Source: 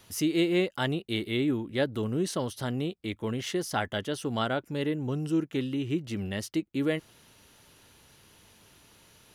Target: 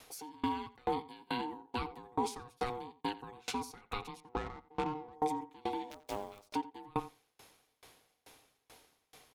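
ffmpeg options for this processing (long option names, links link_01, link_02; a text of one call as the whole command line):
ffmpeg -i in.wav -filter_complex "[0:a]aecho=1:1:6.1:0.62,alimiter=limit=-24dB:level=0:latency=1:release=19,acrossover=split=490[link_01][link_02];[link_02]acompressor=threshold=-34dB:ratio=3[link_03];[link_01][link_03]amix=inputs=2:normalize=0,asettb=1/sr,asplit=3[link_04][link_05][link_06];[link_04]atrim=end=5.904[link_07];[link_05]atrim=start=5.9:end=6.47,asetpts=PTS-STARTPTS,afade=type=in:duration=0.004:curve=qsin,afade=type=out:start_time=0.566:duration=0.004:curve=qsin,acrusher=bits=5:dc=4:mix=0:aa=0.000001[link_08];[link_06]atrim=start=6.466[link_09];[link_07][link_08]acrossfade=duration=0.004:curve1=hsin:curve2=qsin[link_10];[link_10][link_09]acrossfade=duration=0.004:curve1=qsin:curve2=hsin,aeval=exprs='val(0)*sin(2*PI*610*n/s)':channel_layout=same,asettb=1/sr,asplit=3[link_11][link_12][link_13];[link_11]atrim=end=4.204[link_14];[link_12]atrim=start=4.2:end=5.13,asetpts=PTS-STARTPTS,afade=type=in:duration=0.004:curve=qsin,afade=type=out:start_time=0.926:duration=0.004:curve=qsin,adynamicsmooth=sensitivity=5:basefreq=890[link_15];[link_13]atrim=start=5.126[link_16];[link_14][link_15]acrossfade=duration=0.004:curve1=hsin:curve2=qsin[link_17];[link_17][link_16]acrossfade=duration=0.004:curve1=qsin:curve2=hsin,asplit=2[link_18][link_19];[link_19]adelay=88,lowpass=frequency=2800:poles=1,volume=-10dB,asplit=2[link_20][link_21];[link_21]adelay=88,lowpass=frequency=2800:poles=1,volume=0.18,asplit=2[link_22][link_23];[link_23]adelay=88,lowpass=frequency=2800:poles=1,volume=0.18[link_24];[link_18][link_20][link_22][link_24]amix=inputs=4:normalize=0,aeval=exprs='val(0)*pow(10,-31*if(lt(mod(2.3*n/s,1),2*abs(2.3)/1000),1-mod(2.3*n/s,1)/(2*abs(2.3)/1000),(mod(2.3*n/s,1)-2*abs(2.3)/1000)/(1-2*abs(2.3)/1000))/20)':channel_layout=same,volume=4dB" out.wav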